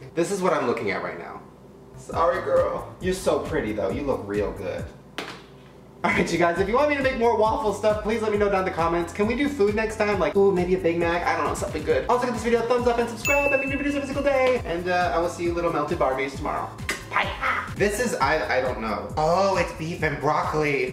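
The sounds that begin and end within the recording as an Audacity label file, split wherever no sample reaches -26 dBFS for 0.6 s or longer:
2.100000	5.300000	sound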